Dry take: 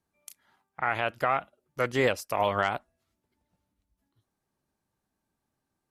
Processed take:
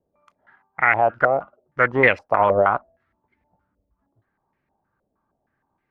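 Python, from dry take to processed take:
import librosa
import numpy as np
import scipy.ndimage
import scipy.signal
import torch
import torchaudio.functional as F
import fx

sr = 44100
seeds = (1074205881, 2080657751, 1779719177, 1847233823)

y = fx.filter_held_lowpass(x, sr, hz=6.4, low_hz=550.0, high_hz=2100.0)
y = F.gain(torch.from_numpy(y), 5.5).numpy()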